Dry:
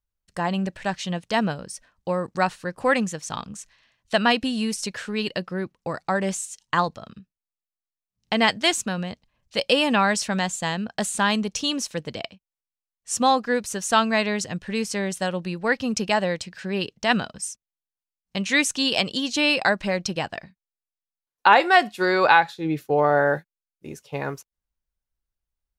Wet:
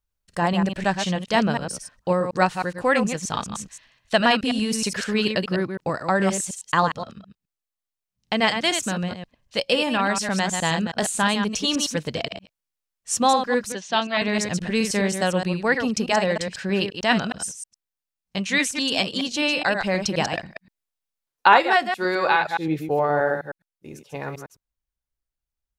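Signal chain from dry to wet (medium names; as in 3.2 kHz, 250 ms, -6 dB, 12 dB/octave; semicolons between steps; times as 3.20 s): chunks repeated in reverse 105 ms, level -6.5 dB; gain riding within 4 dB 0.5 s; 13.72–14.22 s: cabinet simulation 220–5100 Hz, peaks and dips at 470 Hz -5 dB, 1.3 kHz -7 dB, 3.4 kHz +4 dB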